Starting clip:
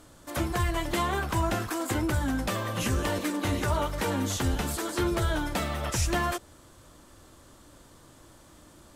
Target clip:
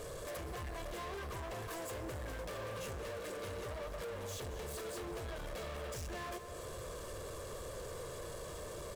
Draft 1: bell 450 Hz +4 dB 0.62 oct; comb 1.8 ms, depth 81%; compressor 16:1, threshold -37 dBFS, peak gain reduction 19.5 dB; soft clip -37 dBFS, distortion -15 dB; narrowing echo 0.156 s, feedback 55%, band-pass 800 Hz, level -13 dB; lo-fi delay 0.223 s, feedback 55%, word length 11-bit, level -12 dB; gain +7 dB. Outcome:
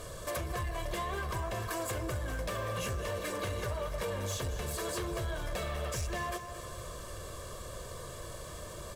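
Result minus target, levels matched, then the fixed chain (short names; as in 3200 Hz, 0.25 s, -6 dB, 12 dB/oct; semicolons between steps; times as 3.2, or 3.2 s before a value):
soft clip: distortion -9 dB; 500 Hz band -2.0 dB
bell 450 Hz +12.5 dB 0.62 oct; comb 1.8 ms, depth 81%; compressor 16:1, threshold -37 dBFS, peak gain reduction 22.5 dB; soft clip -48.5 dBFS, distortion -6 dB; narrowing echo 0.156 s, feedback 55%, band-pass 800 Hz, level -13 dB; lo-fi delay 0.223 s, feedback 55%, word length 11-bit, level -12 dB; gain +7 dB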